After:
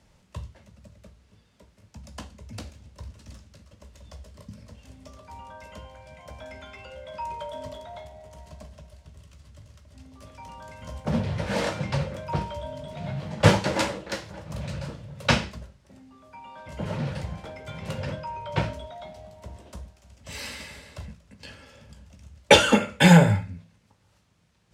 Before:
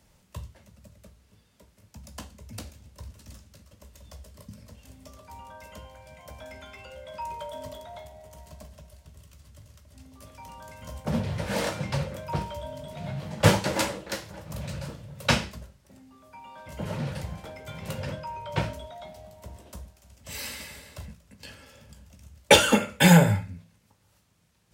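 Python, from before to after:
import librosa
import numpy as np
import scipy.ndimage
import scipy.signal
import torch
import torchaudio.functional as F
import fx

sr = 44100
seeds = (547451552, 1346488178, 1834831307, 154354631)

y = fx.air_absorb(x, sr, metres=52.0)
y = y * 10.0 ** (2.0 / 20.0)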